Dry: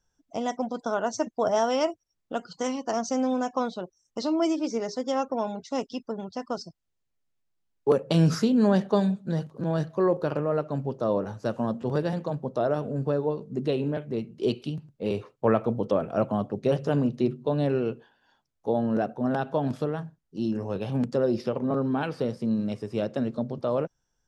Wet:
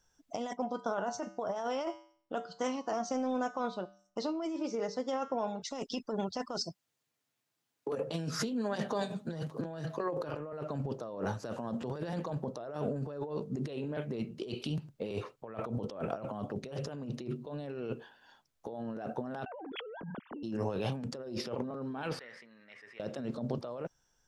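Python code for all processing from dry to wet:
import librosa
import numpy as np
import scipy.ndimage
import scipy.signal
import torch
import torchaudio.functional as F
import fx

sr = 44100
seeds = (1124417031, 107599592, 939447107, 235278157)

y = fx.chain(x, sr, fx.high_shelf(hz=3600.0, db=-9.0),
    fx.comb_fb(f0_hz=65.0, decay_s=0.52, harmonics='odd', damping=0.0, mix_pct=60), at=(0.53, 5.62))
y = fx.chain(y, sr, fx.over_compress(threshold_db=-25.0, ratio=-0.5),
    fx.highpass(hz=110.0, slope=24),
    fx.notch_comb(f0_hz=190.0), at=(6.65, 10.53))
y = fx.chain(y, sr, fx.sine_speech(),
    fx.air_absorb(metres=190.0),
    fx.env_flatten(amount_pct=100), at=(19.46, 20.43))
y = fx.chain(y, sr, fx.bandpass_q(hz=1900.0, q=8.3),
    fx.sustainer(db_per_s=32.0), at=(22.19, 23.0))
y = fx.low_shelf(y, sr, hz=440.0, db=-6.0)
y = fx.over_compress(y, sr, threshold_db=-37.0, ratio=-1.0)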